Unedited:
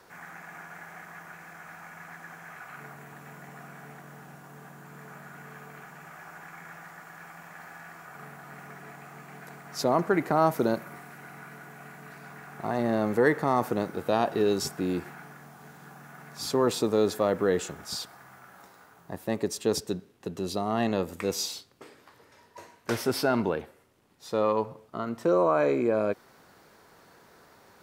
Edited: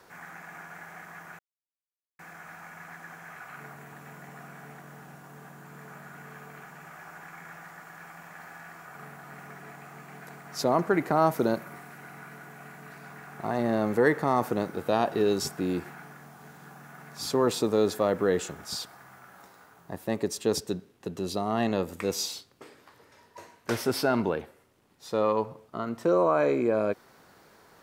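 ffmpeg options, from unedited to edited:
-filter_complex "[0:a]asplit=2[a][b];[a]atrim=end=1.39,asetpts=PTS-STARTPTS,afade=t=out:st=1.386:d=0.004:c=hsin,apad=pad_dur=0.8[c];[b]atrim=start=1.39,asetpts=PTS-STARTPTS,afade=t=in:d=0.004:c=hsin[d];[c][d]concat=n=2:v=0:a=1"

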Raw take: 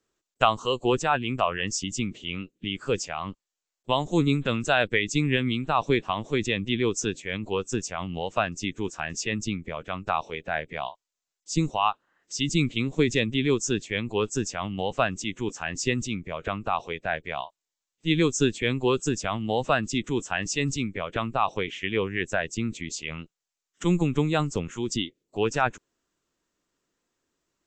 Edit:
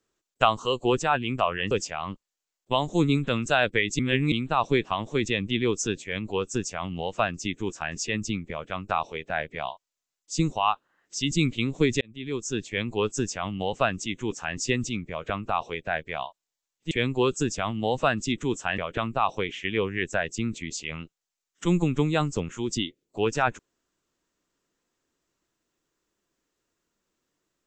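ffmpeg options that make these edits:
-filter_complex "[0:a]asplit=7[a][b][c][d][e][f][g];[a]atrim=end=1.712[h];[b]atrim=start=2.888:end=5.172[i];[c]atrim=start=5.168:end=5.502,asetpts=PTS-STARTPTS,areverse[j];[d]atrim=start=5.498:end=13.19,asetpts=PTS-STARTPTS,afade=t=out:st=7.688:d=0.004:c=hsin[k];[e]atrim=start=13.19:end=18.092,asetpts=PTS-STARTPTS,afade=t=in:d=0.78[l];[f]atrim=start=18.568:end=20.442[m];[g]atrim=start=20.968[n];[h][i]acrossfade=d=0.004:c1=hsin:c2=hsin[o];[o][j]acrossfade=d=0.004:c1=hsin:c2=hsin[p];[k][l]concat=n=2:v=0:a=1[q];[p][q]acrossfade=d=0.004:c1=hsin:c2=hsin[r];[r][m]acrossfade=d=0.004:c1=hsin:c2=hsin[s];[s][n]acrossfade=d=0.004:c1=hsin:c2=hsin"

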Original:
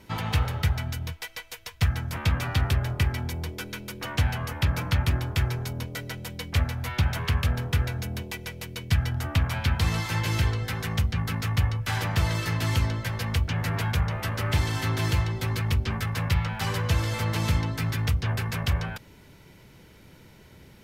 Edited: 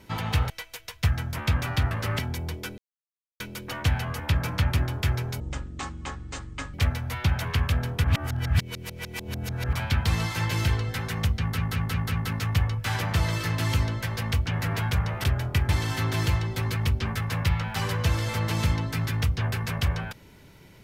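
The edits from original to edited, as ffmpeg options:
-filter_complex "[0:a]asplit=15[a][b][c][d][e][f][g][h][i][j][k][l][m][n][o];[a]atrim=end=0.502[p];[b]atrim=start=1.278:end=2.692[q];[c]atrim=start=14.258:end=14.542[r];[d]atrim=start=3.138:end=3.73,asetpts=PTS-STARTPTS,afade=t=out:st=0.588:d=0.004:c=hsin,apad=pad_dur=0.62[s];[e]atrim=start=3.73:end=5.734,asetpts=PTS-STARTPTS,afade=t=in:d=0.004:c=hsin[t];[f]atrim=start=5.73:end=6.48,asetpts=PTS-STARTPTS,asetrate=24696,aresample=44100,atrim=end_sample=59062,asetpts=PTS-STARTPTS[u];[g]atrim=start=6.476:end=7.782[v];[h]atrim=start=7.778:end=9.472,asetpts=PTS-STARTPTS,areverse[w];[i]atrim=start=9.468:end=11.322[x];[j]atrim=start=11.138:end=11.322[y];[k]atrim=start=11.138:end=11.322[z];[l]atrim=start=11.138:end=11.322[aa];[m]atrim=start=11.138:end=14.262[ab];[n]atrim=start=2.688:end=3.142[ac];[o]atrim=start=14.538[ad];[p][q]acrossfade=d=0.004:c1=hsin:c2=hsin[ae];[ae][r]acrossfade=d=0.004:c1=hsin:c2=hsin[af];[s][t]concat=n=2:v=0:a=1[ag];[af][ag]acrossfade=d=0.004:c1=hsin:c2=hsin[ah];[ah][u]acrossfade=d=0.004:c1=hsin:c2=hsin[ai];[ai][v]acrossfade=d=0.004:c1=hsin:c2=hsin[aj];[aj][w]acrossfade=d=0.004:c1=hsin:c2=hsin[ak];[ak][x]acrossfade=d=0.004:c1=hsin:c2=hsin[al];[al][y]acrossfade=d=0.004:c1=hsin:c2=hsin[am];[am][z]acrossfade=d=0.004:c1=hsin:c2=hsin[an];[an][aa]acrossfade=d=0.004:c1=hsin:c2=hsin[ao];[ao][ab]acrossfade=d=0.004:c1=hsin:c2=hsin[ap];[ap][ac]acrossfade=d=0.004:c1=hsin:c2=hsin[aq];[aq][ad]acrossfade=d=0.004:c1=hsin:c2=hsin"

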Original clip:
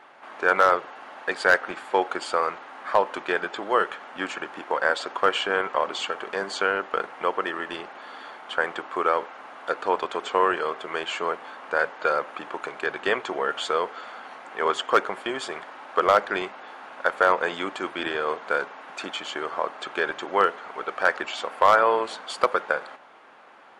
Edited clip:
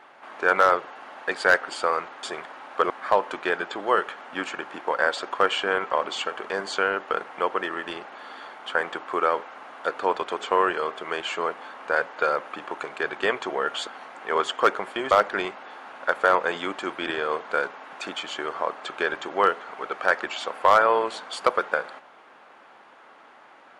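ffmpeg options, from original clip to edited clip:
-filter_complex "[0:a]asplit=6[a][b][c][d][e][f];[a]atrim=end=1.682[g];[b]atrim=start=2.178:end=2.732[h];[c]atrim=start=15.408:end=16.082[i];[d]atrim=start=2.728:end=13.702[j];[e]atrim=start=14.168:end=15.412[k];[f]atrim=start=16.078[l];[g][h]acrossfade=d=0.004:c1=hsin:c2=hsin[m];[m][i]acrossfade=d=0.004:c1=hsin:c2=hsin[n];[n][j]acrossfade=d=0.004:c1=hsin:c2=hsin[o];[o][k]acrossfade=d=0.004:c1=hsin:c2=hsin[p];[p][l]acrossfade=d=0.004:c1=hsin:c2=hsin"

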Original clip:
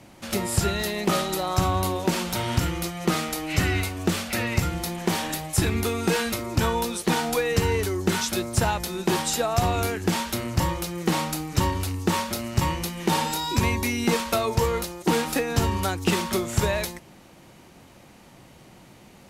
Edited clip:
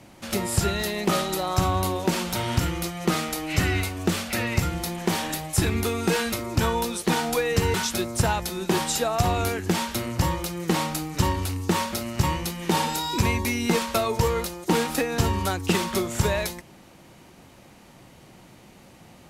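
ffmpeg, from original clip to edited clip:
-filter_complex "[0:a]asplit=2[a][b];[a]atrim=end=7.742[c];[b]atrim=start=8.118[d];[c][d]acrossfade=d=0.004:c1=hsin:c2=hsin"

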